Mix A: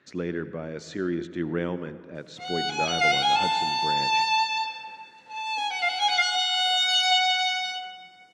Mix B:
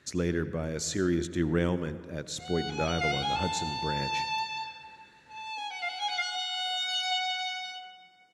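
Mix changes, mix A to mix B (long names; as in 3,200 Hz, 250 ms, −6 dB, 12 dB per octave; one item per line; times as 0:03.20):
speech: remove band-pass filter 170–3,100 Hz
background −8.5 dB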